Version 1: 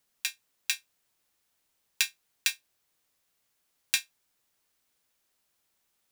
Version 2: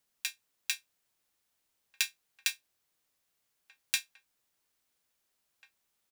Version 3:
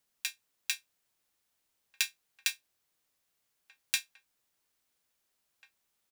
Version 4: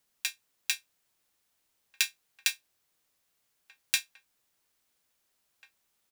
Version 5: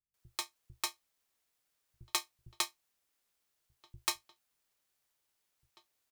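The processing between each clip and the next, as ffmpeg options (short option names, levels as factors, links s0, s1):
-filter_complex "[0:a]asplit=2[s0][s1];[s1]adelay=1691,volume=0.158,highshelf=f=4000:g=-38[s2];[s0][s2]amix=inputs=2:normalize=0,volume=0.668"
-af anull
-af "acrusher=bits=5:mode=log:mix=0:aa=0.000001,volume=1.41"
-filter_complex "[0:a]aeval=exprs='val(0)*sin(2*PI*1500*n/s)':c=same,acrossover=split=180[s0][s1];[s1]adelay=140[s2];[s0][s2]amix=inputs=2:normalize=0,volume=0.794"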